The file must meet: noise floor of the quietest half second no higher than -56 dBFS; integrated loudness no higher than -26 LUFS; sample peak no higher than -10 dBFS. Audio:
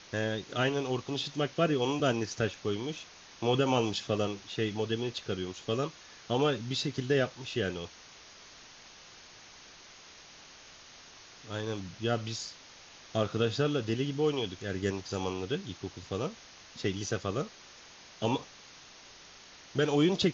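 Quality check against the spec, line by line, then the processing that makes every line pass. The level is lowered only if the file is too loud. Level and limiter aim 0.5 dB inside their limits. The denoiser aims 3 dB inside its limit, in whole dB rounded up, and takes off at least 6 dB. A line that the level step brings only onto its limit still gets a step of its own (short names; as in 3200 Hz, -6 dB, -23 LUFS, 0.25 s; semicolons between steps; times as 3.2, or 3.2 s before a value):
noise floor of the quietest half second -53 dBFS: fail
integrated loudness -32.5 LUFS: OK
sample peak -13.5 dBFS: OK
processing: denoiser 6 dB, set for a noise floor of -53 dBFS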